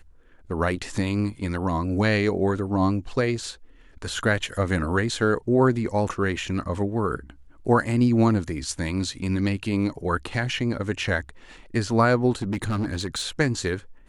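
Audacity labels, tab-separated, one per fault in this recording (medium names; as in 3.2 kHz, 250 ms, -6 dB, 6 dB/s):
12.420000	13.290000	clipped -22 dBFS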